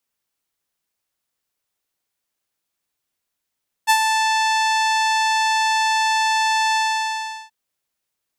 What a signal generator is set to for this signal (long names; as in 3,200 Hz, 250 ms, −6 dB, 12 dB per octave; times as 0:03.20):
subtractive voice saw A5 12 dB per octave, low-pass 6,500 Hz, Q 1.1, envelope 1 octave, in 0.41 s, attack 30 ms, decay 0.07 s, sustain −6 dB, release 0.75 s, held 2.88 s